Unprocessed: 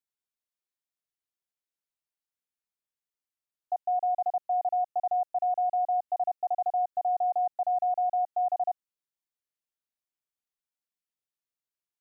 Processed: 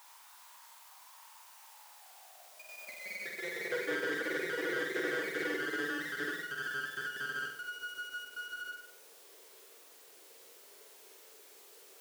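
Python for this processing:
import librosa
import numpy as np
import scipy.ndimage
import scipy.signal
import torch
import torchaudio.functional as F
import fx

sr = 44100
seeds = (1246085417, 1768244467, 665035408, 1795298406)

p1 = x + 0.5 * 10.0 ** (-39.5 / 20.0) * np.sign(x)
p2 = fx.echo_pitch(p1, sr, ms=128, semitones=3, count=3, db_per_echo=-3.0)
p3 = np.abs(p2)
p4 = p3 + fx.room_flutter(p3, sr, wall_m=8.1, rt60_s=0.57, dry=0)
p5 = fx.filter_sweep_highpass(p4, sr, from_hz=940.0, to_hz=420.0, start_s=1.52, end_s=4.0, q=6.5)
p6 = fx.doubler(p5, sr, ms=13.0, db=-11)
p7 = fx.end_taper(p6, sr, db_per_s=160.0)
y = p7 * librosa.db_to_amplitude(-8.0)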